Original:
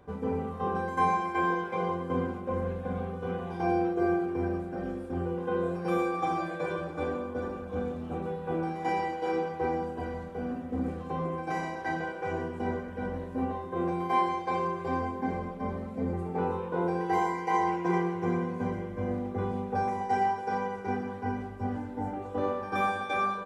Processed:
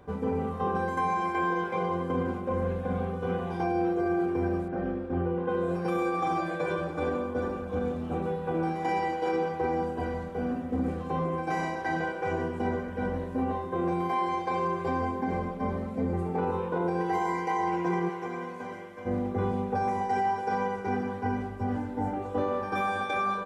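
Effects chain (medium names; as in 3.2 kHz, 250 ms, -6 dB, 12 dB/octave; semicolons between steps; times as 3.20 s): 4.68–5.49 s: low-pass 2.8 kHz 12 dB/octave; peak limiter -23.5 dBFS, peak gain reduction 8 dB; 18.08–19.05 s: high-pass 610 Hz -> 1.4 kHz 6 dB/octave; trim +3.5 dB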